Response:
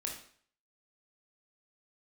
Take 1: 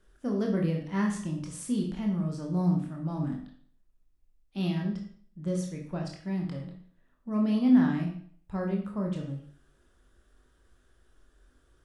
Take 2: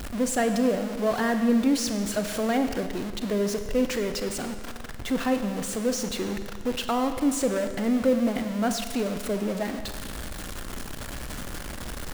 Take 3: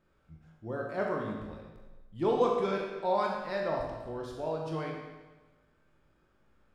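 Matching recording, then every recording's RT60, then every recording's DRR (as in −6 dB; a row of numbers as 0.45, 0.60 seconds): 1; 0.55, 1.7, 1.2 seconds; −0.5, 7.5, −1.0 decibels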